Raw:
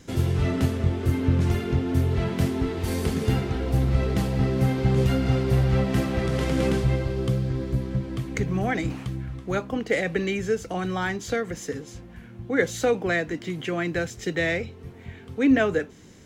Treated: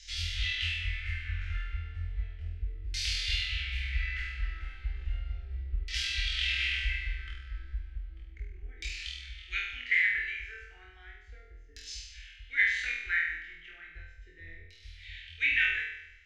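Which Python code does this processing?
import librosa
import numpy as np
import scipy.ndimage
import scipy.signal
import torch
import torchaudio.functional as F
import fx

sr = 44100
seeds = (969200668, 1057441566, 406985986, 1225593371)

y = fx.filter_lfo_lowpass(x, sr, shape='saw_down', hz=0.34, low_hz=370.0, high_hz=5300.0, q=2.2)
y = scipy.signal.sosfilt(scipy.signal.cheby2(4, 40, [110.0, 1100.0], 'bandstop', fs=sr, output='sos'), y)
y = fx.doubler(y, sr, ms=20.0, db=-13.5)
y = fx.room_flutter(y, sr, wall_m=4.2, rt60_s=0.81)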